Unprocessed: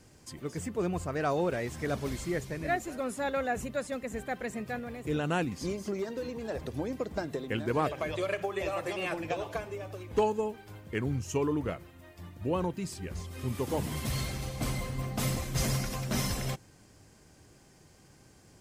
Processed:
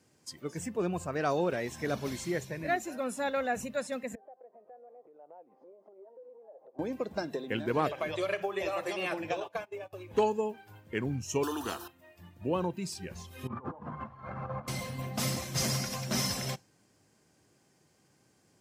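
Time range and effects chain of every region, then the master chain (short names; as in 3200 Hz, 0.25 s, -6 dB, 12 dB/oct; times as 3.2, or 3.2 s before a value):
4.15–6.79 Butterworth band-pass 620 Hz, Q 1.3 + compressor, threshold -48 dBFS
9.4–9.93 gate -41 dBFS, range -19 dB + low shelf 110 Hz -7.5 dB
11.43–11.88 fixed phaser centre 570 Hz, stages 6 + spectral compressor 2:1
13.47–14.68 notches 60/120/180/240/300/360/420/480 Hz + negative-ratio compressor -38 dBFS, ratio -0.5 + synth low-pass 1200 Hz, resonance Q 2.9
whole clip: HPF 130 Hz 12 dB/oct; dynamic EQ 5300 Hz, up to +6 dB, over -57 dBFS, Q 2.3; spectral noise reduction 8 dB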